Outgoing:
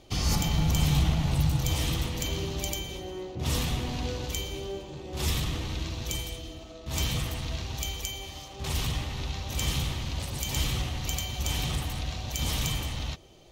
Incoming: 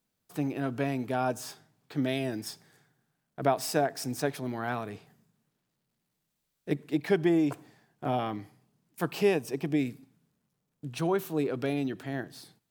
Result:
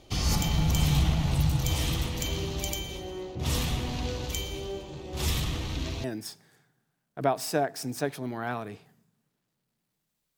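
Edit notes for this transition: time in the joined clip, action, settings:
outgoing
5.18 add incoming from 1.39 s 0.86 s -13 dB
6.04 switch to incoming from 2.25 s

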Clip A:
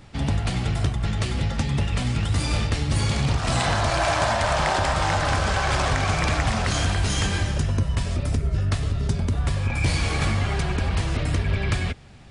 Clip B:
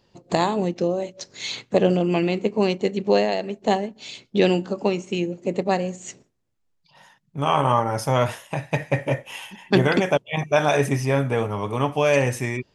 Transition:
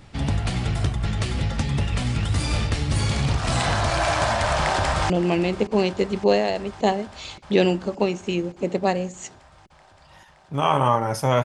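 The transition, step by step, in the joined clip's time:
clip A
4.57–5.1 echo throw 0.57 s, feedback 80%, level -15.5 dB
5.1 switch to clip B from 1.94 s

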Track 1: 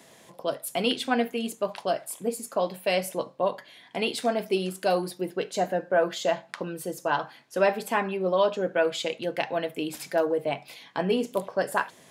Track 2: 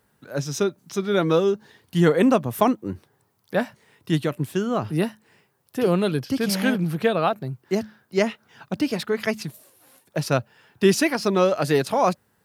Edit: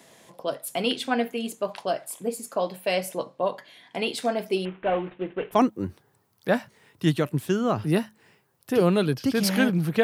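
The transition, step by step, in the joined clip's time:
track 1
4.65–5.59 CVSD 16 kbps
5.55 switch to track 2 from 2.61 s, crossfade 0.08 s

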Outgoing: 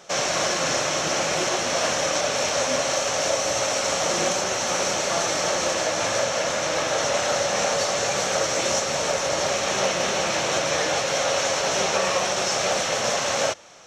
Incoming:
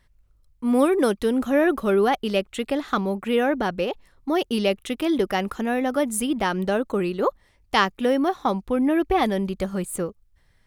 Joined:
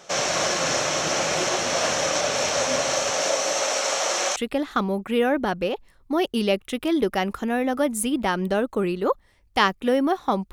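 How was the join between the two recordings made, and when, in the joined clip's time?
outgoing
3.1–4.36 HPF 180 Hz -> 640 Hz
4.36 switch to incoming from 2.53 s

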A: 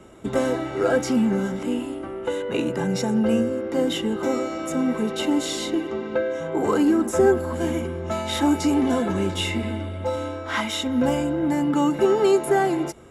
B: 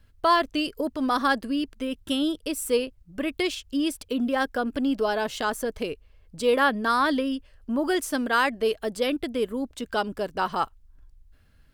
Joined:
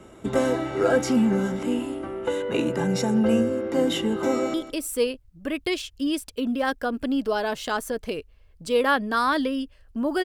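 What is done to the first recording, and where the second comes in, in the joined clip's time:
A
4.26–4.54 echo throw 0.16 s, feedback 15%, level -11.5 dB
4.54 switch to B from 2.27 s

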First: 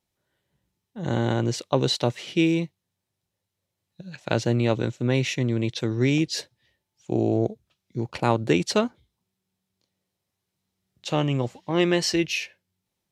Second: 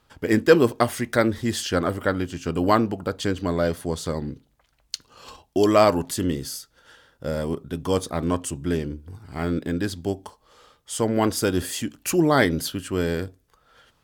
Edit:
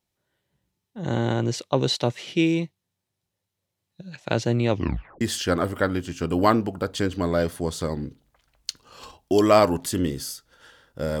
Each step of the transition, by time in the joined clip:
first
4.7 tape stop 0.51 s
5.21 switch to second from 1.46 s

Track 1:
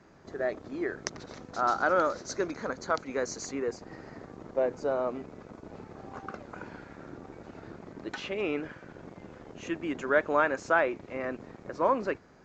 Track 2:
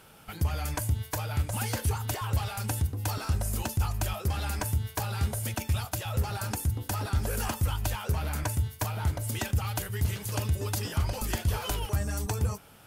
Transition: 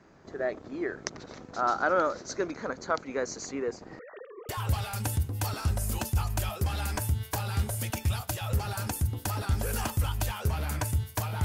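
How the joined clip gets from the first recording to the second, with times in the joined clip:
track 1
3.99–4.49 sine-wave speech
4.49 switch to track 2 from 2.13 s

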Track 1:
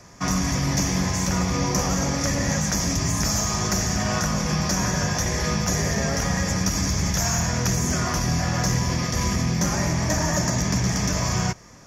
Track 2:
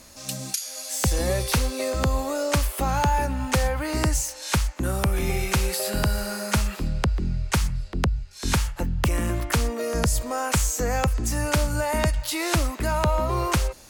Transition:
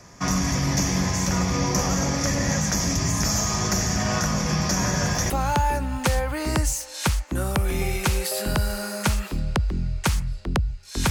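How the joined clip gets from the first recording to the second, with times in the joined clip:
track 1
4.81 add track 2 from 2.29 s 0.49 s -14.5 dB
5.3 switch to track 2 from 2.78 s

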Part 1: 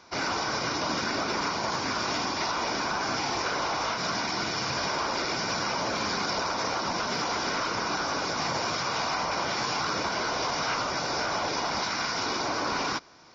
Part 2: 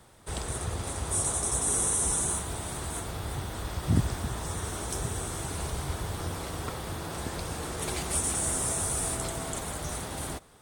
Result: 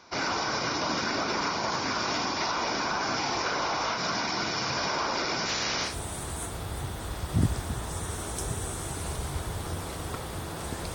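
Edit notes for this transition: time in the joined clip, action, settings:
part 1
5.45–5.97 spectral limiter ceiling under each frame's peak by 17 dB
5.9 switch to part 2 from 2.44 s, crossfade 0.14 s

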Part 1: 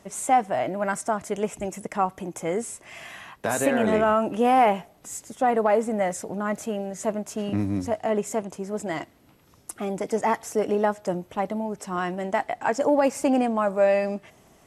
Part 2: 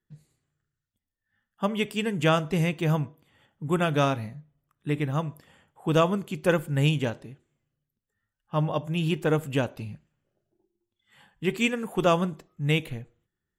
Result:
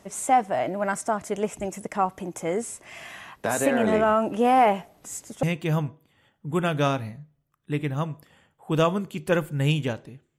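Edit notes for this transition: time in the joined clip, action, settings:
part 1
5.43 switch to part 2 from 2.6 s

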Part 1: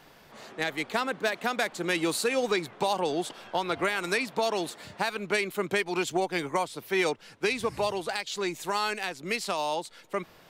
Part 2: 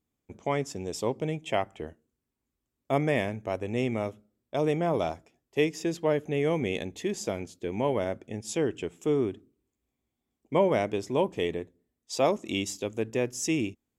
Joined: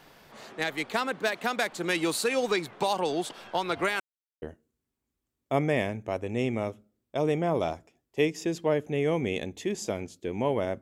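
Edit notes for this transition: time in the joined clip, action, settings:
part 1
4–4.42 mute
4.42 switch to part 2 from 1.81 s

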